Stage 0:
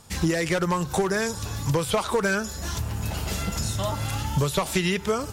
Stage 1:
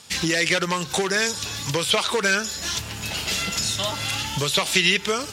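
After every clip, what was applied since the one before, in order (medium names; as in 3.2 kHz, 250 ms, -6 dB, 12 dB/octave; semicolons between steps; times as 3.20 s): frequency weighting D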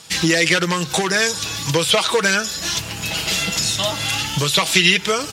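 comb 6.2 ms, depth 40%; trim +4 dB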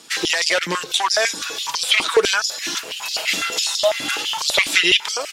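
step-sequenced high-pass 12 Hz 280–4700 Hz; trim -3.5 dB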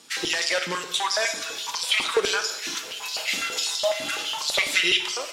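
two-slope reverb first 0.75 s, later 2.6 s, DRR 5.5 dB; trim -6.5 dB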